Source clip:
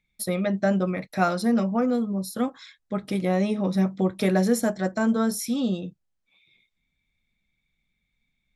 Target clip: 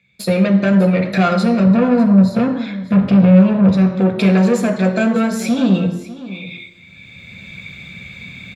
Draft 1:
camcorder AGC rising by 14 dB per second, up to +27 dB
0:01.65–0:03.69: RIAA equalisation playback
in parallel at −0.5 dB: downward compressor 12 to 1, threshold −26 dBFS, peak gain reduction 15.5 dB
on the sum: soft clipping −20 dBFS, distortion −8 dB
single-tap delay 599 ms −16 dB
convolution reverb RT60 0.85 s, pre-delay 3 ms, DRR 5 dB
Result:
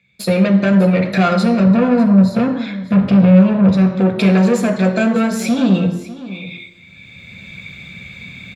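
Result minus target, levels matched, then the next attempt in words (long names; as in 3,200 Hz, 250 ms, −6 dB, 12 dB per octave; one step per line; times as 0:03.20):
downward compressor: peak gain reduction −6.5 dB
camcorder AGC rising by 14 dB per second, up to +27 dB
0:01.65–0:03.69: RIAA equalisation playback
in parallel at −0.5 dB: downward compressor 12 to 1, threshold −33 dBFS, peak gain reduction 22 dB
on the sum: soft clipping −20 dBFS, distortion −8 dB
single-tap delay 599 ms −16 dB
convolution reverb RT60 0.85 s, pre-delay 3 ms, DRR 5 dB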